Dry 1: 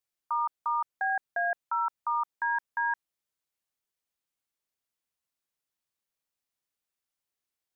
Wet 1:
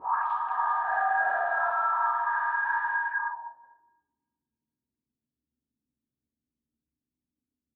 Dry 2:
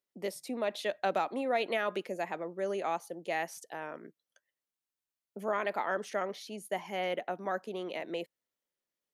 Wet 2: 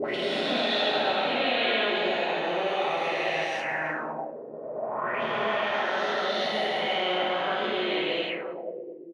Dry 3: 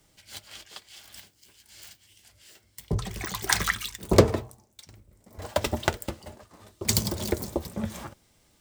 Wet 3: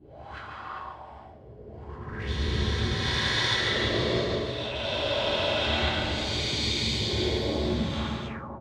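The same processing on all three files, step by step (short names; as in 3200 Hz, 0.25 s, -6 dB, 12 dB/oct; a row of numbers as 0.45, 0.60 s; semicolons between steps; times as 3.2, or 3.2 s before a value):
spectral swells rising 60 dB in 2.76 s; compressor 10:1, threshold -27 dBFS; HPF 71 Hz; low shelf 140 Hz +10.5 dB; on a send: reverse bouncing-ball echo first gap 0.14 s, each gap 1.15×, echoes 5; on the sum: two-slope reverb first 0.7 s, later 2.4 s, DRR -5 dB; envelope low-pass 250–3500 Hz up, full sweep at -22.5 dBFS; match loudness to -27 LUFS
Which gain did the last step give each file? -4.5, -5.0, -7.0 dB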